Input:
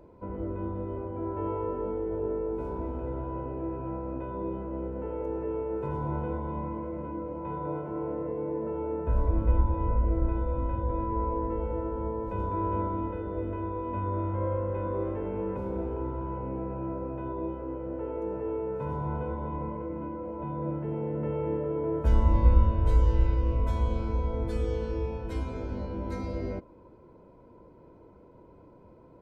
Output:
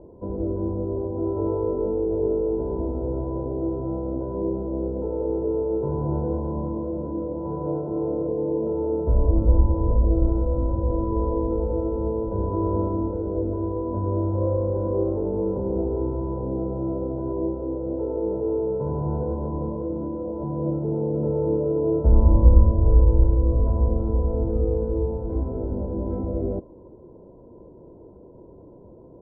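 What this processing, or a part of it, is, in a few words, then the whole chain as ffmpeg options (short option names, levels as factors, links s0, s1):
under water: -af "lowpass=f=810:w=0.5412,lowpass=f=810:w=1.3066,equalizer=f=380:t=o:w=0.32:g=4,volume=2.11"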